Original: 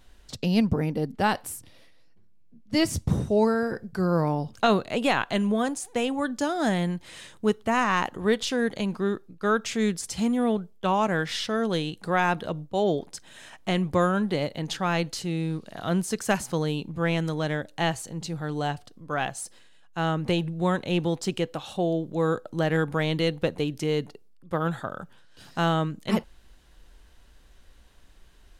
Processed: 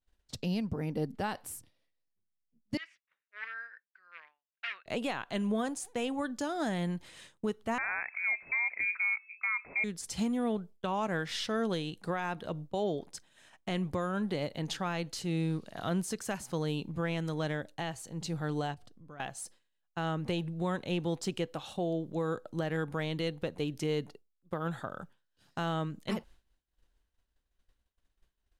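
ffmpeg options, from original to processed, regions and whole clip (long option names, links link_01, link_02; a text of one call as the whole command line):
ffmpeg -i in.wav -filter_complex "[0:a]asettb=1/sr,asplit=3[link_01][link_02][link_03];[link_01]atrim=end=2.774[link_04];[link_02]atrim=start=2.77:end=4.86,asetpts=PTS-STARTPTS,afade=type=in:duration=0.004:curve=qsin,afade=type=out:start_time=2.086:duration=0.004:curve=qsin,aeval=exprs='0.141*(abs(mod(val(0)/0.141+3,4)-2)-1)':channel_layout=same,asuperpass=centerf=2100:order=4:qfactor=1.9[link_05];[link_03]atrim=start=4.856[link_06];[link_04][link_05]acrossfade=duration=0.004:curve1=hsin:curve2=qsin[link_07];[link_07][link_06]acrossfade=duration=0.004:curve1=qsin:curve2=hsin,asettb=1/sr,asplit=3[link_08][link_09][link_10];[link_08]atrim=end=7.784[link_11];[link_09]atrim=start=7.78:end=9.84,asetpts=PTS-STARTPTS,afade=type=in:duration=0.004:curve=qsin,afade=type=out:start_time=2.056:duration=0.004:curve=qsin,equalizer=frequency=420:width_type=o:width=1.8:gain=10,lowpass=frequency=2200:width_type=q:width=0.5098,lowpass=frequency=2200:width_type=q:width=0.6013,lowpass=frequency=2200:width_type=q:width=0.9,lowpass=frequency=2200:width_type=q:width=2.563,afreqshift=-2600[link_12];[link_10]atrim=start=9.836[link_13];[link_11][link_12]acrossfade=duration=0.004:curve1=hsin:curve2=qsin[link_14];[link_14][link_13]acrossfade=duration=0.004:curve1=qsin:curve2=hsin,asettb=1/sr,asplit=3[link_15][link_16][link_17];[link_15]atrim=end=18.744[link_18];[link_16]atrim=start=18.74:end=19.2,asetpts=PTS-STARTPTS,afade=type=in:duration=0.004:curve=qsin,afade=type=out:start_time=0.456:duration=0.004:curve=qsin,lowshelf=frequency=320:gain=7.5,acompressor=threshold=-40dB:ratio=8:attack=3.2:release=140:knee=1:detection=peak[link_19];[link_17]atrim=start=19.196[link_20];[link_18][link_19]acrossfade=duration=0.004:curve1=hsin:curve2=qsin[link_21];[link_21][link_20]acrossfade=duration=0.004:curve1=qsin:curve2=hsin,agate=range=-33dB:threshold=-38dB:ratio=3:detection=peak,alimiter=limit=-20.5dB:level=0:latency=1:release=417,volume=-3dB" out.wav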